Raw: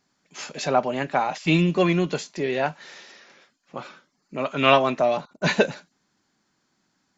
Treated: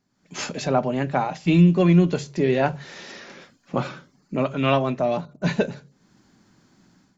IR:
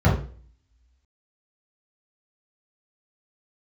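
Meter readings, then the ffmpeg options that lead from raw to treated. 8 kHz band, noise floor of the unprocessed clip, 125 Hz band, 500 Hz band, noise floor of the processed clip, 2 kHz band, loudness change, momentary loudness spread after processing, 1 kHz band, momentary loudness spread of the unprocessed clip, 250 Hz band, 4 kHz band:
can't be measured, −72 dBFS, +7.0 dB, 0.0 dB, −65 dBFS, −4.5 dB, +0.5 dB, 19 LU, −2.5 dB, 20 LU, +4.5 dB, −4.5 dB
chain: -filter_complex "[0:a]lowshelf=frequency=380:gain=11,dynaudnorm=framelen=110:gausssize=5:maxgain=15dB,asplit=2[link_01][link_02];[1:a]atrim=start_sample=2205[link_03];[link_02][link_03]afir=irnorm=-1:irlink=0,volume=-39dB[link_04];[link_01][link_04]amix=inputs=2:normalize=0,volume=-7.5dB"

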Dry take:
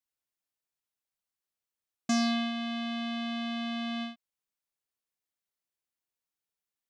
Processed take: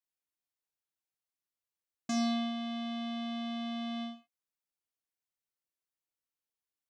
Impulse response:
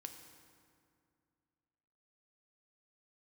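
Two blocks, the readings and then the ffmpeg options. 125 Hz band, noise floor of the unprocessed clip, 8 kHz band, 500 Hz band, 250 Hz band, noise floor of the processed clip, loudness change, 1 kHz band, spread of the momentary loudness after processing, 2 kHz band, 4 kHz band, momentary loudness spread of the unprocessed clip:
can't be measured, below −85 dBFS, −5.0 dB, −2.5 dB, −3.0 dB, below −85 dBFS, −3.5 dB, −3.0 dB, 11 LU, −8.5 dB, −5.0 dB, 9 LU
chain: -filter_complex "[1:a]atrim=start_sample=2205,afade=type=out:start_time=0.17:duration=0.01,atrim=end_sample=7938[link_01];[0:a][link_01]afir=irnorm=-1:irlink=0"

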